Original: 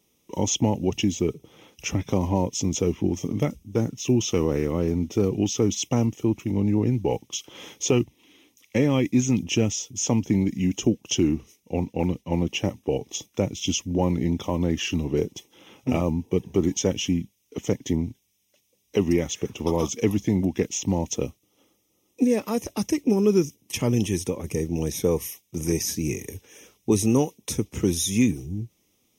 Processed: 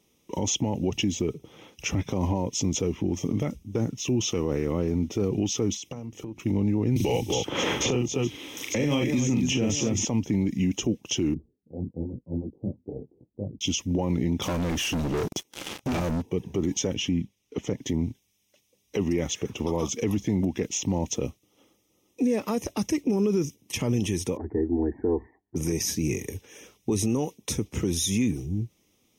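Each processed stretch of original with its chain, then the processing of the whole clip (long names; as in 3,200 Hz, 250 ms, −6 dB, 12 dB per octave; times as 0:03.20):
0:05.76–0:06.40: downward compressor 12 to 1, threshold −34 dBFS + parametric band 500 Hz +3.5 dB 0.34 octaves + mains-hum notches 50/100/150/200/250/300/350 Hz
0:06.96–0:10.05: multi-tap delay 41/235/258/897 ms −4/−19/−11/−20 dB + multiband upward and downward compressor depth 100%
0:11.34–0:13.61: two-band tremolo in antiphase 6 Hz, crossover 570 Hz + Gaussian smoothing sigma 17 samples + micro pitch shift up and down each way 33 cents
0:14.42–0:16.22: leveller curve on the samples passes 5 + parametric band 11,000 Hz +6 dB 2.3 octaves + downward compressor 4 to 1, threshold −31 dBFS
0:16.94–0:17.78: high-shelf EQ 6,600 Hz −10 dB + notch filter 630 Hz, Q 18
0:24.37–0:25.56: Butterworth low-pass 1,800 Hz 96 dB per octave + phaser with its sweep stopped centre 800 Hz, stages 8 + dynamic equaliser 300 Hz, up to +4 dB, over −39 dBFS, Q 0.77
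whole clip: high-shelf EQ 8,100 Hz −6.5 dB; brickwall limiter −18.5 dBFS; level +2 dB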